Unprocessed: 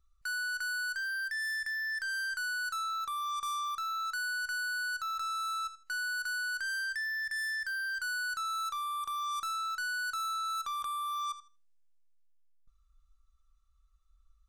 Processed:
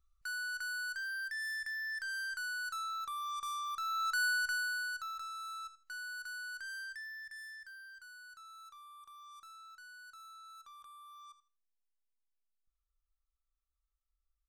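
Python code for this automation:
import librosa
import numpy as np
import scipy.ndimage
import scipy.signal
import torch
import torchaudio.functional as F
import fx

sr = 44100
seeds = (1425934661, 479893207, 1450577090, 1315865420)

y = fx.gain(x, sr, db=fx.line((3.65, -4.5), (4.24, 3.5), (5.31, -9.0), (6.81, -9.0), (8.09, -19.0)))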